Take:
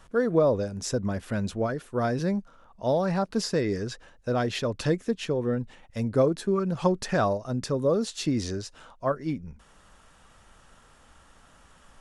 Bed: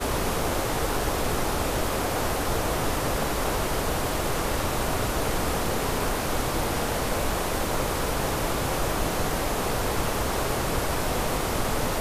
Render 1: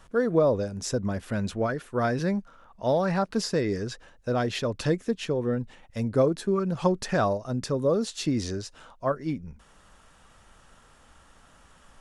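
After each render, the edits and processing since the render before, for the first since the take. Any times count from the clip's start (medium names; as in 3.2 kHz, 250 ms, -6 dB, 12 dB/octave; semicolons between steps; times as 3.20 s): 1.39–3.37 s: peaking EQ 1.8 kHz +4 dB 1.6 oct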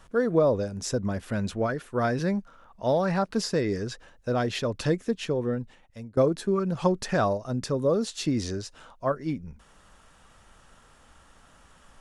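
5.40–6.17 s: fade out, to -20.5 dB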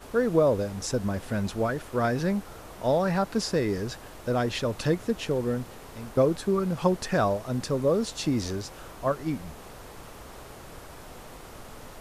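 add bed -18.5 dB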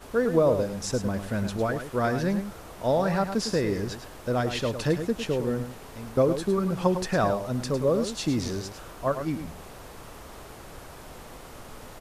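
delay 105 ms -9 dB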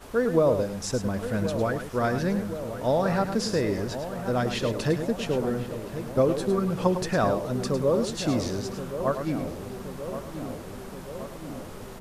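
filtered feedback delay 1074 ms, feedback 71%, low-pass 1.4 kHz, level -10 dB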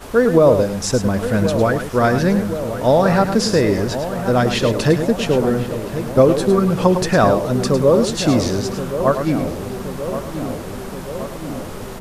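trim +10 dB; peak limiter -2 dBFS, peak gain reduction 2.5 dB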